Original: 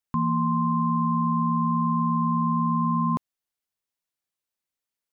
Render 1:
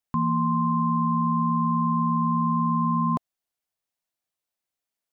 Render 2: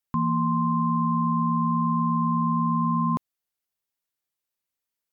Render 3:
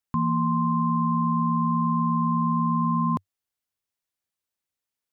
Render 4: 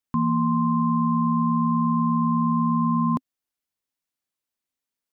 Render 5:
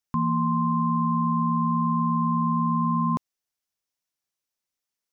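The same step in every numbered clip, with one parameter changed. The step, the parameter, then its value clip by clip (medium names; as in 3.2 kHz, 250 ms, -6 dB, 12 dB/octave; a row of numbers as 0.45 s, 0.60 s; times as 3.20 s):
peaking EQ, frequency: 690 Hz, 16 kHz, 96 Hz, 260 Hz, 5.7 kHz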